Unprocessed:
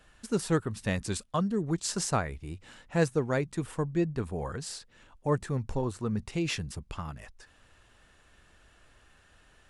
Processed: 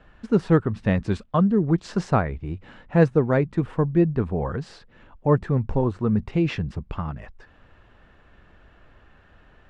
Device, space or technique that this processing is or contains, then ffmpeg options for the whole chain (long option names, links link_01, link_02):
phone in a pocket: -af "lowpass=3300,equalizer=frequency=190:width_type=o:width=0.77:gain=2,highshelf=frequency=2100:gain=-9.5,volume=8.5dB"